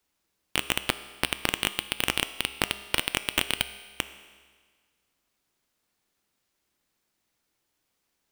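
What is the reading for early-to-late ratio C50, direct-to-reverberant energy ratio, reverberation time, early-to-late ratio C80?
13.5 dB, 11.5 dB, 1.6 s, 14.5 dB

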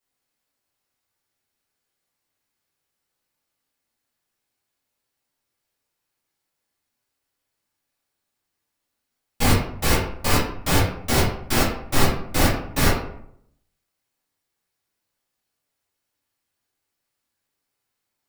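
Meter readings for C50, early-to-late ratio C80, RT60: 3.5 dB, 8.0 dB, 0.70 s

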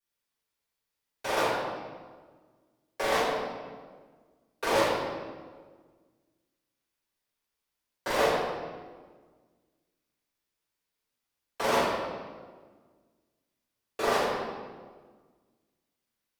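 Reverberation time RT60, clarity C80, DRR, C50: 1.6 s, 1.0 dB, -14.0 dB, -1.5 dB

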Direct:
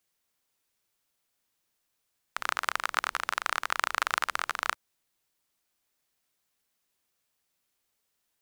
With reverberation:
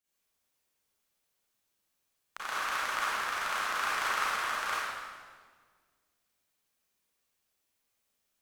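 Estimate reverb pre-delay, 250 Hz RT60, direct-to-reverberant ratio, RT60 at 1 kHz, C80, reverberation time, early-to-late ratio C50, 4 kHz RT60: 31 ms, 2.1 s, -10.5 dB, 1.5 s, -2.0 dB, 1.6 s, -5.5 dB, 1.4 s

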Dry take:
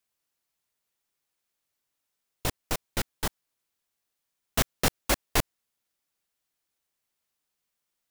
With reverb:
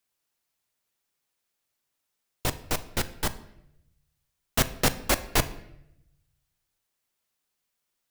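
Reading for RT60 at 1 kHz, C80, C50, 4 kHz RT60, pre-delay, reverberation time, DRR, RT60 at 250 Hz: 0.70 s, 18.0 dB, 15.5 dB, 0.65 s, 8 ms, 0.80 s, 11.0 dB, 1.0 s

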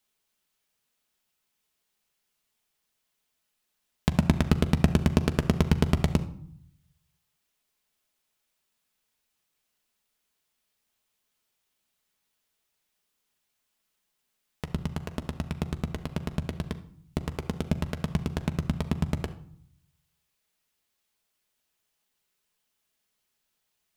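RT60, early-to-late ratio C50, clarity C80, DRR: 0.60 s, 14.0 dB, 17.5 dB, 7.0 dB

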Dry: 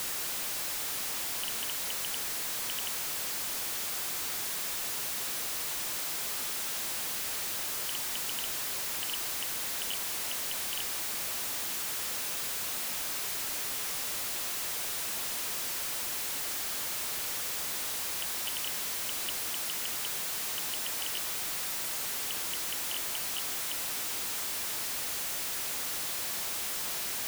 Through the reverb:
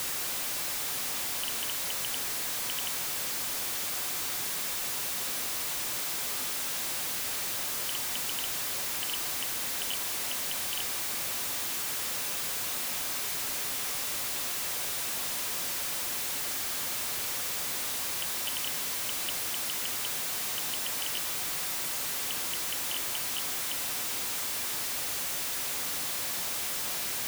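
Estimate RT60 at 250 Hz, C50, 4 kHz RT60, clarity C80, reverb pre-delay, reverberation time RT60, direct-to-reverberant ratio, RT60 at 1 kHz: 0.35 s, 18.0 dB, 0.45 s, 22.5 dB, 3 ms, 0.45 s, 10.5 dB, 0.45 s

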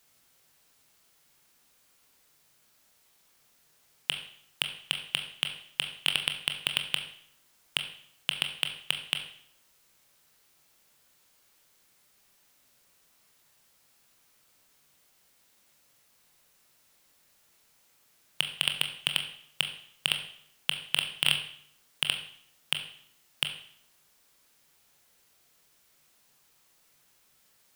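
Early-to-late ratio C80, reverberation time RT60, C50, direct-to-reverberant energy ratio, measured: 11.5 dB, 0.65 s, 9.0 dB, 5.0 dB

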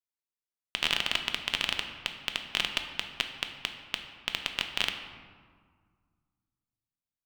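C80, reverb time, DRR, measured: 9.0 dB, 1.8 s, 5.0 dB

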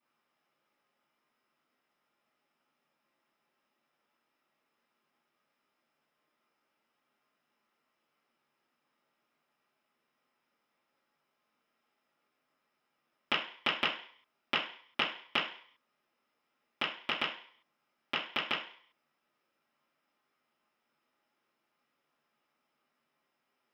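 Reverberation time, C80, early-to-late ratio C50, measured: 0.50 s, 11.5 dB, 7.0 dB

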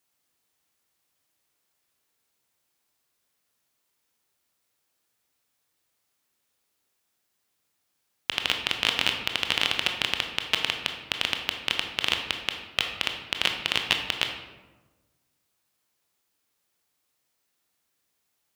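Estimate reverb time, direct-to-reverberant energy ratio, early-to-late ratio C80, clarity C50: 1.2 s, 3.5 dB, 8.0 dB, 6.0 dB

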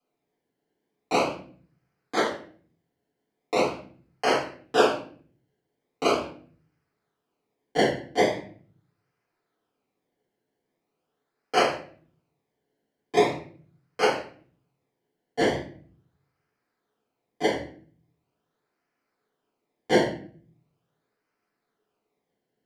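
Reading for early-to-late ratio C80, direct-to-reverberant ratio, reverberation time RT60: 10.5 dB, -9.5 dB, 0.45 s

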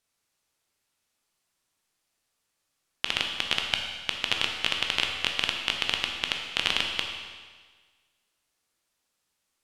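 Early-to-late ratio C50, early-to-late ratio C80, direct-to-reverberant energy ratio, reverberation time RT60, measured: 4.0 dB, 5.5 dB, 1.5 dB, 1.5 s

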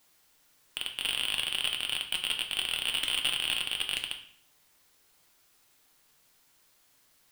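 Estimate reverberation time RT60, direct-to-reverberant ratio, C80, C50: 0.55 s, 2.5 dB, 13.0 dB, 9.5 dB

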